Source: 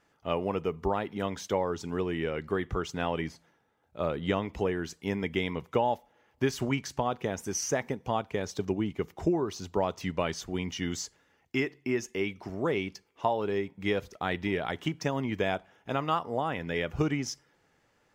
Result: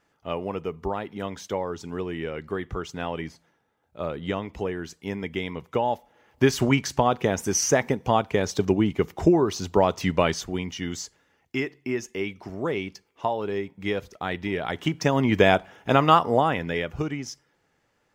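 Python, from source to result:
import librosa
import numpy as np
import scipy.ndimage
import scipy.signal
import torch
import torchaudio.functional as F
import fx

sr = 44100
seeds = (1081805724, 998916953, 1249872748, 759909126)

y = fx.gain(x, sr, db=fx.line((5.6, 0.0), (6.48, 8.5), (10.27, 8.5), (10.69, 1.5), (14.49, 1.5), (15.39, 11.5), (16.3, 11.5), (17.04, -1.0)))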